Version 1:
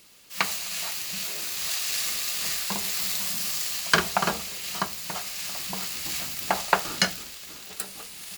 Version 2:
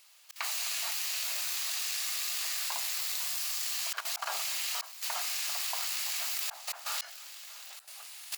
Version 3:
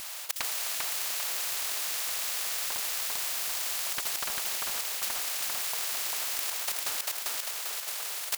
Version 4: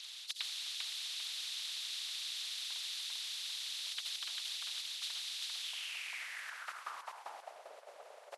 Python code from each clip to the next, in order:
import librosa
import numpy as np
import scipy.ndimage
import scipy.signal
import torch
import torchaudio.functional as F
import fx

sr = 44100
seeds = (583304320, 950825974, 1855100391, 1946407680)

y1 = scipy.signal.sosfilt(scipy.signal.butter(6, 650.0, 'highpass', fs=sr, output='sos'), x)
y1 = fx.auto_swell(y1, sr, attack_ms=284.0)
y1 = fx.level_steps(y1, sr, step_db=13)
y1 = y1 * librosa.db_to_amplitude(5.0)
y2 = fx.transient(y1, sr, attack_db=8, sustain_db=-2)
y2 = fx.echo_feedback(y2, sr, ms=396, feedback_pct=31, wet_db=-4)
y2 = fx.spectral_comp(y2, sr, ratio=4.0)
y3 = fx.freq_compress(y2, sr, knee_hz=3900.0, ratio=1.5)
y3 = fx.filter_sweep_bandpass(y3, sr, from_hz=3700.0, to_hz=580.0, start_s=5.57, end_s=7.7, q=4.1)
y3 = fx.hpss(y3, sr, part='percussive', gain_db=6)
y3 = y3 * librosa.db_to_amplitude(-1.5)